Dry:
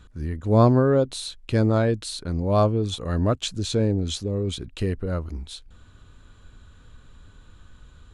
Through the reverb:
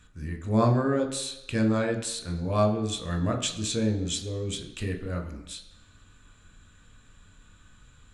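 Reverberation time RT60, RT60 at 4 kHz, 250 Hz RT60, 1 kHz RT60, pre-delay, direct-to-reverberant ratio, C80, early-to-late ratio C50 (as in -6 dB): 0.95 s, 1.0 s, 0.90 s, 1.0 s, 16 ms, 3.5 dB, 12.5 dB, 9.5 dB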